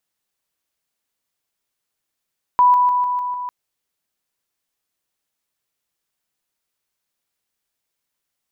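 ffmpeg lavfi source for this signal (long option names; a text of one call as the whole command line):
ffmpeg -f lavfi -i "aevalsrc='pow(10,(-9-3*floor(t/0.15))/20)*sin(2*PI*988*t)':duration=0.9:sample_rate=44100" out.wav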